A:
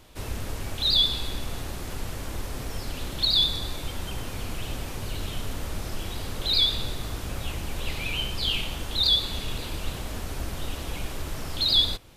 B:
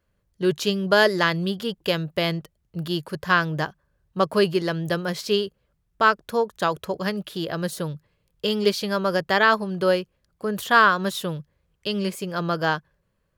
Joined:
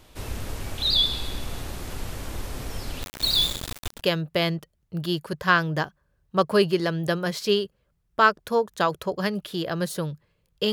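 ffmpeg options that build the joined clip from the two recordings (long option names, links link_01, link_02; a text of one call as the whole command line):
ffmpeg -i cue0.wav -i cue1.wav -filter_complex "[0:a]asplit=3[link_01][link_02][link_03];[link_01]afade=type=out:start_time=3.02:duration=0.02[link_04];[link_02]aeval=exprs='val(0)*gte(abs(val(0)),0.0531)':channel_layout=same,afade=type=in:start_time=3.02:duration=0.02,afade=type=out:start_time=4.02:duration=0.02[link_05];[link_03]afade=type=in:start_time=4.02:duration=0.02[link_06];[link_04][link_05][link_06]amix=inputs=3:normalize=0,apad=whole_dur=10.72,atrim=end=10.72,atrim=end=4.02,asetpts=PTS-STARTPTS[link_07];[1:a]atrim=start=1.74:end=8.54,asetpts=PTS-STARTPTS[link_08];[link_07][link_08]acrossfade=duration=0.1:curve1=tri:curve2=tri" out.wav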